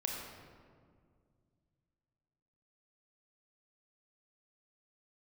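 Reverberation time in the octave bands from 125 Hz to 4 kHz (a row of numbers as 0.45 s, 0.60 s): 3.3 s, 2.8 s, 2.3 s, 1.8 s, 1.4 s, 1.0 s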